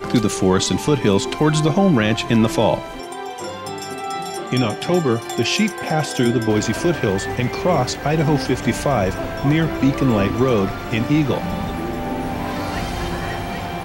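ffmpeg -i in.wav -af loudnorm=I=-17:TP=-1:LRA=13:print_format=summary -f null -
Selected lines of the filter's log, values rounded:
Input Integrated:    -20.2 LUFS
Input True Peak:      -4.4 dBTP
Input LRA:             4.1 LU
Input Threshold:     -30.2 LUFS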